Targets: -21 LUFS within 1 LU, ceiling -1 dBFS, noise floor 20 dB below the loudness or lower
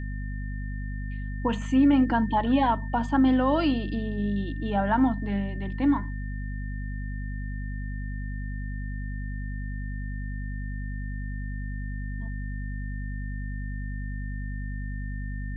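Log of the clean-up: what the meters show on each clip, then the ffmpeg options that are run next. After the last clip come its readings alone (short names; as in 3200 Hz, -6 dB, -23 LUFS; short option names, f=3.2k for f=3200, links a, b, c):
hum 50 Hz; harmonics up to 250 Hz; hum level -30 dBFS; steady tone 1800 Hz; tone level -44 dBFS; loudness -29.0 LUFS; peak -12.0 dBFS; loudness target -21.0 LUFS
-> -af "bandreject=f=50:t=h:w=6,bandreject=f=100:t=h:w=6,bandreject=f=150:t=h:w=6,bandreject=f=200:t=h:w=6,bandreject=f=250:t=h:w=6"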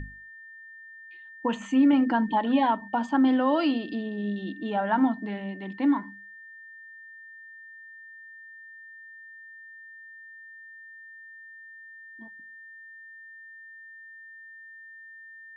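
hum none; steady tone 1800 Hz; tone level -44 dBFS
-> -af "bandreject=f=1.8k:w=30"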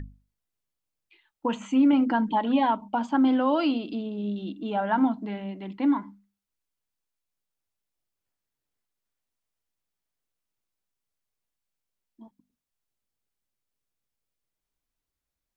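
steady tone none; loudness -25.5 LUFS; peak -12.5 dBFS; loudness target -21.0 LUFS
-> -af "volume=4.5dB"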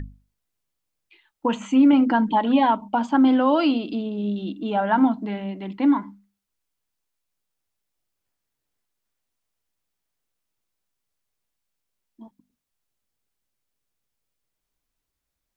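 loudness -21.0 LUFS; peak -8.0 dBFS; noise floor -82 dBFS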